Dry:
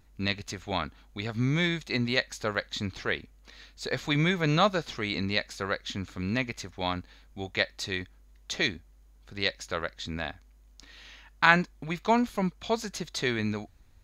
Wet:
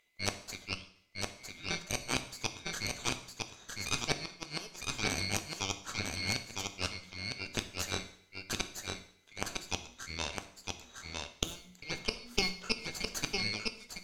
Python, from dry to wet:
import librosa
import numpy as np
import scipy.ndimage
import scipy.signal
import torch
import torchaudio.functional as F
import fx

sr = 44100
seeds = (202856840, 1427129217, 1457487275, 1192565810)

y = fx.band_swap(x, sr, width_hz=2000)
y = fx.tone_stack(y, sr, knobs='6-0-2', at=(0.73, 1.69), fade=0.02)
y = fx.cheby_harmonics(y, sr, harmonics=(2, 4, 6, 8), levels_db=(-15, -17, -32, -8), full_scale_db=-3.0)
y = fx.peak_eq(y, sr, hz=2000.0, db=-13.0, octaves=0.28)
y = fx.hum_notches(y, sr, base_hz=60, count=4)
y = fx.gate_flip(y, sr, shuts_db=-8.0, range_db=-26)
y = y + 10.0 ** (-3.5 / 20.0) * np.pad(y, (int(957 * sr / 1000.0), 0))[:len(y)]
y = fx.rev_double_slope(y, sr, seeds[0], early_s=0.61, late_s=2.1, knee_db=-28, drr_db=8.0)
y = F.gain(torch.from_numpy(y), -5.5).numpy()